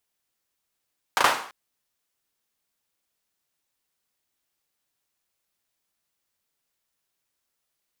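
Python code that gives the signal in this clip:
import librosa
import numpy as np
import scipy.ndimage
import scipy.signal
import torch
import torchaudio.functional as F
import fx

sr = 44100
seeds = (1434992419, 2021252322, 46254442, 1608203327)

y = fx.drum_clap(sr, seeds[0], length_s=0.34, bursts=3, spacing_ms=36, hz=1000.0, decay_s=0.49)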